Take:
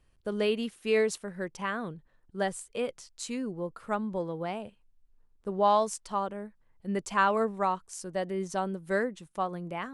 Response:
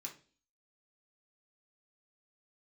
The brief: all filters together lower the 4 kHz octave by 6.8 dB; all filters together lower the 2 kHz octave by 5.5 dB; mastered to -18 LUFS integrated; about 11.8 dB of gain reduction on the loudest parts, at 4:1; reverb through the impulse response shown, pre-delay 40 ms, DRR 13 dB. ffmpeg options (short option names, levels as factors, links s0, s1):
-filter_complex "[0:a]equalizer=f=2000:t=o:g=-6,equalizer=f=4000:t=o:g=-7,acompressor=threshold=0.0158:ratio=4,asplit=2[s0][s1];[1:a]atrim=start_sample=2205,adelay=40[s2];[s1][s2]afir=irnorm=-1:irlink=0,volume=0.335[s3];[s0][s3]amix=inputs=2:normalize=0,volume=13.3"